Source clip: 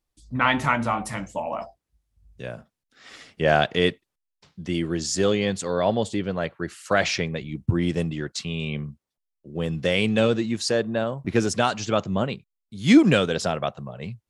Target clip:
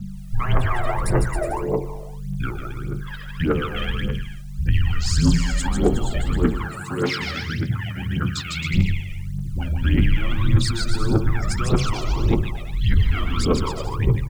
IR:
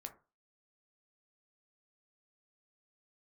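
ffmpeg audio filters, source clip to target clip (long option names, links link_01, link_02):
-filter_complex "[0:a]acompressor=threshold=-21dB:ratio=20,aeval=exprs='val(0)+0.01*(sin(2*PI*50*n/s)+sin(2*PI*2*50*n/s)/2+sin(2*PI*3*50*n/s)/3+sin(2*PI*4*50*n/s)/4+sin(2*PI*5*50*n/s)/5)':channel_layout=same,equalizer=frequency=630:width_type=o:width=0.33:gain=3,equalizer=frequency=1600:width_type=o:width=0.33:gain=4,equalizer=frequency=6300:width_type=o:width=0.33:gain=-7[link_01];[1:a]atrim=start_sample=2205[link_02];[link_01][link_02]afir=irnorm=-1:irlink=0,afreqshift=-240,alimiter=level_in=4.5dB:limit=-24dB:level=0:latency=1:release=10,volume=-4.5dB,asettb=1/sr,asplit=3[link_03][link_04][link_05];[link_03]atrim=end=6.304[link_06];[link_04]atrim=start=6.3:end=8.74,asetpts=PTS-STARTPTS,afade=type=in:duration=0.004:curve=qsin,afade=type=out:start_time=2.436:duration=0.004:curve=qsin,highpass=frequency=100:width=0.5412,highpass=frequency=100:width=1.3066[link_07];[link_05]atrim=start=8.736[link_08];[link_06][link_07]acrossfade=duration=0.004:curve1=hsin:curve2=qsin[link_09];[link_09][link_08]acrossfade=duration=0.004:curve1=qsin:curve2=hsin,afftfilt=real='re*gte(hypot(re,im),0.00398)':imag='im*gte(hypot(re,im),0.00398)':win_size=1024:overlap=0.75,acrusher=bits=10:mix=0:aa=0.000001,aecho=1:1:150|270|366|442.8|504.2:0.631|0.398|0.251|0.158|0.1,aphaser=in_gain=1:out_gain=1:delay=1.7:decay=0.77:speed=1.7:type=triangular,volume=7.5dB"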